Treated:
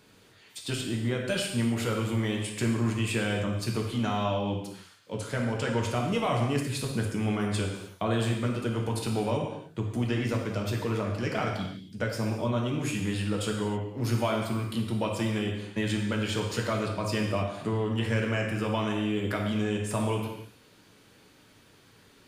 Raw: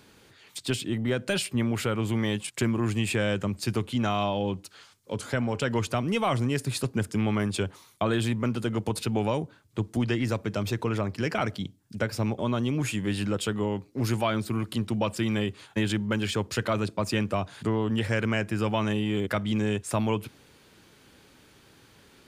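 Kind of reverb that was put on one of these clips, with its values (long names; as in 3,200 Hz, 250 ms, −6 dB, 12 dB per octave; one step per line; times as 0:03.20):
reverb whose tail is shaped and stops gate 340 ms falling, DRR −0.5 dB
level −4.5 dB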